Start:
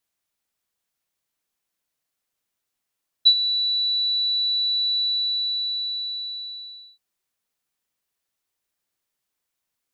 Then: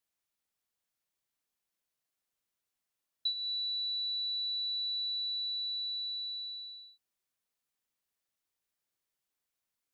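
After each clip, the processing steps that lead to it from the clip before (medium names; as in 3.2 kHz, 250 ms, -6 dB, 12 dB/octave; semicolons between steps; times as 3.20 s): compression 3:1, threshold -29 dBFS, peak gain reduction 12.5 dB; trim -6.5 dB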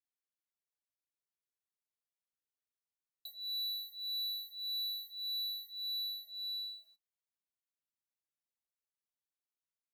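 waveshaping leveller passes 3; saturation -27.5 dBFS, distortion -24 dB; endless flanger 7.5 ms -1.7 Hz; trim -6 dB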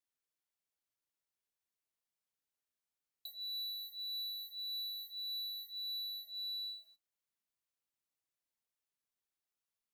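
peak limiter -39.5 dBFS, peak gain reduction 5 dB; trim +1 dB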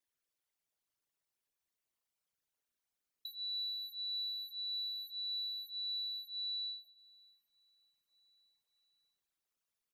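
resonances exaggerated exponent 2; feedback delay 594 ms, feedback 53%, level -23 dB; trim +2 dB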